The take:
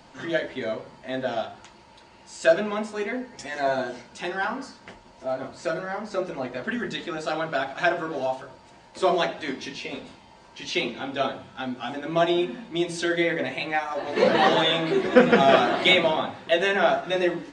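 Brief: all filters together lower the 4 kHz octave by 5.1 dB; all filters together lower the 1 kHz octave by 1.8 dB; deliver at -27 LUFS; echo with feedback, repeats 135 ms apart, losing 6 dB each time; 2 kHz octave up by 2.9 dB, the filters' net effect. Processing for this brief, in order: peaking EQ 1 kHz -4 dB; peaking EQ 2 kHz +7 dB; peaking EQ 4 kHz -9 dB; feedback delay 135 ms, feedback 50%, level -6 dB; trim -3 dB

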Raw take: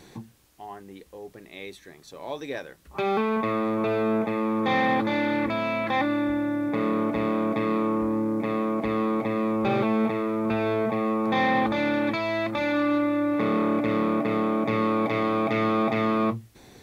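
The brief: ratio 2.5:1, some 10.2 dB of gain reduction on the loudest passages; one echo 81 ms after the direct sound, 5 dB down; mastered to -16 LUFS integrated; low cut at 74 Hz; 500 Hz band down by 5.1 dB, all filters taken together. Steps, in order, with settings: high-pass 74 Hz; peaking EQ 500 Hz -6.5 dB; compression 2.5:1, threshold -38 dBFS; delay 81 ms -5 dB; trim +20.5 dB

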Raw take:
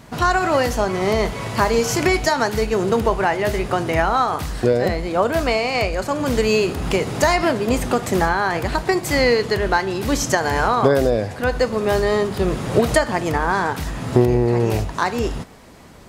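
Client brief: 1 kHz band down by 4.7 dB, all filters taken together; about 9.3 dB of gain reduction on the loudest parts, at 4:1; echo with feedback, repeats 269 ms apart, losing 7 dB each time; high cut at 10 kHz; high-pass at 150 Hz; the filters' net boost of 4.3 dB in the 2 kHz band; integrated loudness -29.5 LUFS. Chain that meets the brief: high-pass 150 Hz; low-pass 10 kHz; peaking EQ 1 kHz -8.5 dB; peaking EQ 2 kHz +8 dB; compression 4:1, threshold -23 dBFS; feedback delay 269 ms, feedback 45%, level -7 dB; trim -4 dB

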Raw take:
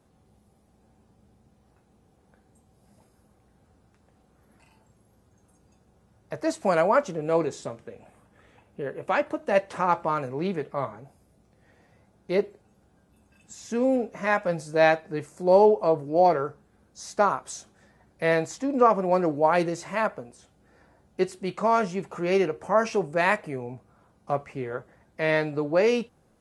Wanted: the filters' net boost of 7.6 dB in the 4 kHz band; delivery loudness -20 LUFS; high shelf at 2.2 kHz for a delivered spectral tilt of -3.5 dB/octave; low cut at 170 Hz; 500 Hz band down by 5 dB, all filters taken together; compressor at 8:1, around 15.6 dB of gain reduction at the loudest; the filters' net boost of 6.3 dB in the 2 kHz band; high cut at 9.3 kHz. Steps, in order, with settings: high-pass 170 Hz; low-pass 9.3 kHz; peaking EQ 500 Hz -7 dB; peaking EQ 2 kHz +5 dB; treble shelf 2.2 kHz +4 dB; peaking EQ 4 kHz +4.5 dB; compression 8:1, threshold -30 dBFS; trim +16 dB

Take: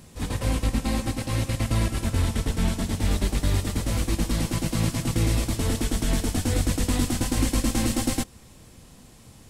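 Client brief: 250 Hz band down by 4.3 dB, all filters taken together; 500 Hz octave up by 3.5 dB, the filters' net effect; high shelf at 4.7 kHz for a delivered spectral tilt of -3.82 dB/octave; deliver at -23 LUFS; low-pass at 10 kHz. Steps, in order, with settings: low-pass 10 kHz; peaking EQ 250 Hz -7 dB; peaking EQ 500 Hz +6 dB; treble shelf 4.7 kHz +8.5 dB; trim +2.5 dB

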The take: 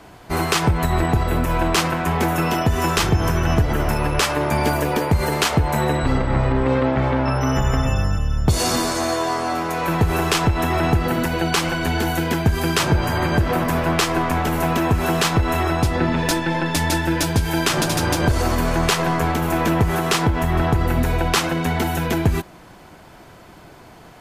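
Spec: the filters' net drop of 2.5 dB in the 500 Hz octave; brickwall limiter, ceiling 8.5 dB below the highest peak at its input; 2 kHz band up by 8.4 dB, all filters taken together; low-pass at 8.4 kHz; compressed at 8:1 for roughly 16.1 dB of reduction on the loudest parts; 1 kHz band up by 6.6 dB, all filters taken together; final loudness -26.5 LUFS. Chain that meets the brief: low-pass 8.4 kHz; peaking EQ 500 Hz -7 dB; peaking EQ 1 kHz +8 dB; peaking EQ 2 kHz +8.5 dB; compression 8:1, threshold -27 dBFS; trim +4.5 dB; peak limiter -17 dBFS

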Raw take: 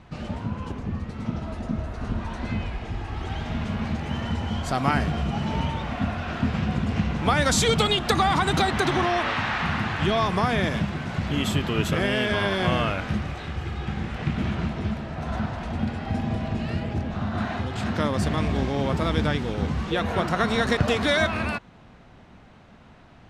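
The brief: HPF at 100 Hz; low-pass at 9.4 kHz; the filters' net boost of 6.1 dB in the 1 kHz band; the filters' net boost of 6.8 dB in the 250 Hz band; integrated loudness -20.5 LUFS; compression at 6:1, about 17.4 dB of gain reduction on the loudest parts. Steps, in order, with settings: high-pass 100 Hz; low-pass 9.4 kHz; peaking EQ 250 Hz +8.5 dB; peaking EQ 1 kHz +7.5 dB; compression 6:1, threshold -33 dBFS; trim +15 dB

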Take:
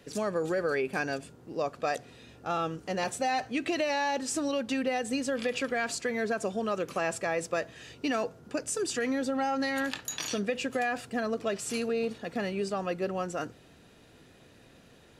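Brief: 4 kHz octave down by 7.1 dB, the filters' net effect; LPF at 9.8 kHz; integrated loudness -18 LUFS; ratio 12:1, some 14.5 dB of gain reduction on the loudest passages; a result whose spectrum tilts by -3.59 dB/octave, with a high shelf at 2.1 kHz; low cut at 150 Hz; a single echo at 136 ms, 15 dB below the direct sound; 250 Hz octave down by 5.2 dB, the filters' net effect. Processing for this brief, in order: high-pass 150 Hz; low-pass 9.8 kHz; peaking EQ 250 Hz -5.5 dB; treble shelf 2.1 kHz -6 dB; peaking EQ 4 kHz -3.5 dB; compression 12:1, threshold -42 dBFS; delay 136 ms -15 dB; trim +28.5 dB

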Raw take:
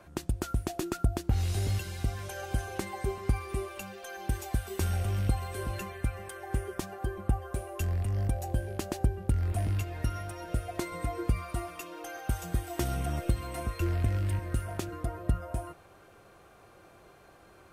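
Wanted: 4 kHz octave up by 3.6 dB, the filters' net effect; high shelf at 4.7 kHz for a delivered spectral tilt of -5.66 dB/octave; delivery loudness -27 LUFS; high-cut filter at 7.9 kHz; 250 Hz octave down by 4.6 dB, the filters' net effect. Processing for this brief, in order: low-pass 7.9 kHz; peaking EQ 250 Hz -7 dB; peaking EQ 4 kHz +6.5 dB; treble shelf 4.7 kHz -3 dB; trim +7.5 dB

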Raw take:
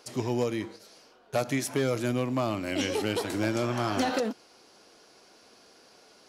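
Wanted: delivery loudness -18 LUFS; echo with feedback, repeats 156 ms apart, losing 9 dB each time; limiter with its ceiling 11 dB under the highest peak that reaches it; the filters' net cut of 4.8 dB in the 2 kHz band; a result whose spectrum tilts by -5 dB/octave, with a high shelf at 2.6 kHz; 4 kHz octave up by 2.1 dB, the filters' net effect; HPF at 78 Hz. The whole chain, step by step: high-pass 78 Hz; peaking EQ 2 kHz -7 dB; treble shelf 2.6 kHz -3.5 dB; peaking EQ 4 kHz +8.5 dB; peak limiter -24.5 dBFS; feedback delay 156 ms, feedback 35%, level -9 dB; trim +16 dB

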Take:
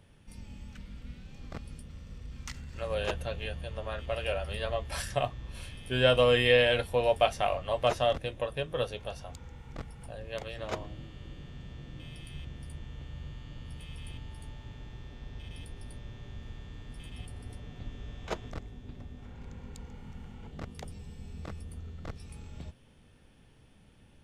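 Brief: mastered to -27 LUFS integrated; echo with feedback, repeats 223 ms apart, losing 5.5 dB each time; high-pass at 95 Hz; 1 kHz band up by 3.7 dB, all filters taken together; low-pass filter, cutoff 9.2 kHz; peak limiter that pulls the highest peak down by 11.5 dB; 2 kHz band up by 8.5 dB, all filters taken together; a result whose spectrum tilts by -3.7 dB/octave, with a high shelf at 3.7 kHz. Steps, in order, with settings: high-pass 95 Hz; low-pass 9.2 kHz; peaking EQ 1 kHz +3 dB; peaking EQ 2 kHz +9 dB; treble shelf 3.7 kHz +4.5 dB; peak limiter -16 dBFS; feedback delay 223 ms, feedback 53%, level -5.5 dB; trim +3.5 dB

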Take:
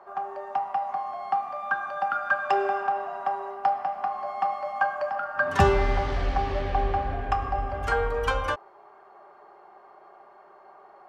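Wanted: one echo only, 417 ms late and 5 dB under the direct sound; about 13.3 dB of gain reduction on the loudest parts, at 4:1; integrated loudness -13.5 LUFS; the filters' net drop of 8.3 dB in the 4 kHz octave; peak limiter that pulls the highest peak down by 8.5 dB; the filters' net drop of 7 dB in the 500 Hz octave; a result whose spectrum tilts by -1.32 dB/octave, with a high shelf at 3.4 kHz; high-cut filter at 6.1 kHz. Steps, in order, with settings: low-pass 6.1 kHz; peaking EQ 500 Hz -9 dB; treble shelf 3.4 kHz -7 dB; peaking EQ 4 kHz -6.5 dB; compression 4:1, threshold -33 dBFS; peak limiter -28.5 dBFS; delay 417 ms -5 dB; trim +24.5 dB

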